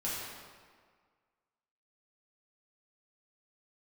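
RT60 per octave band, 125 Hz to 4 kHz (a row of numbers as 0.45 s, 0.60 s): 1.5 s, 1.7 s, 1.7 s, 1.8 s, 1.5 s, 1.2 s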